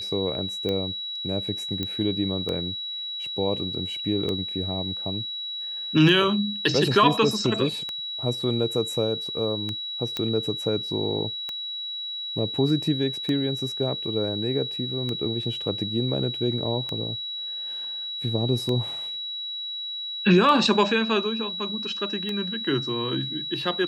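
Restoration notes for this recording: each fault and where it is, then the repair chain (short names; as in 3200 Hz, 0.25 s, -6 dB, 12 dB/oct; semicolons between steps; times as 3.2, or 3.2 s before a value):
tick 33 1/3 rpm -16 dBFS
tone 3900 Hz -30 dBFS
1.83 pop -15 dBFS
10.17 pop -13 dBFS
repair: de-click; notch 3900 Hz, Q 30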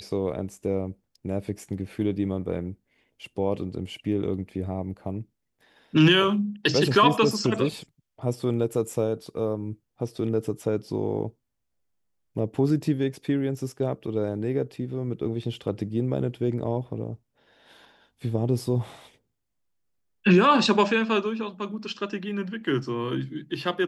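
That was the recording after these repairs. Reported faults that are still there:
none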